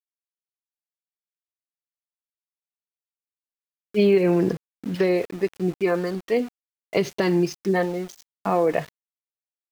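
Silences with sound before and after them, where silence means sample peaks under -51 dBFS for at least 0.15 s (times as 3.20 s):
4.57–4.84 s
6.49–6.93 s
8.23–8.45 s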